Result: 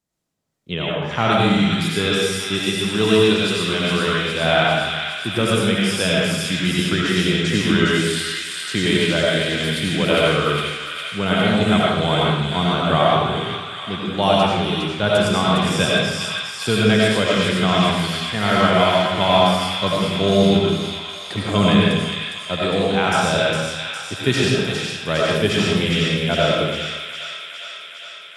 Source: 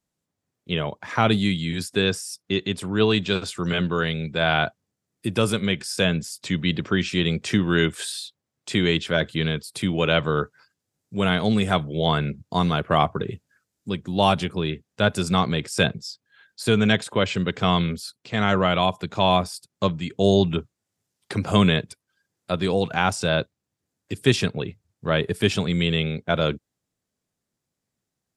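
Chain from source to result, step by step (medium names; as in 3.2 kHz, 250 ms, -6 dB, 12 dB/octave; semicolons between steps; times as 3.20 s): on a send: feedback echo behind a high-pass 408 ms, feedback 72%, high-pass 1.8 kHz, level -4 dB; on the sum: algorithmic reverb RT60 1.1 s, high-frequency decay 0.85×, pre-delay 50 ms, DRR -4.5 dB; trim -1 dB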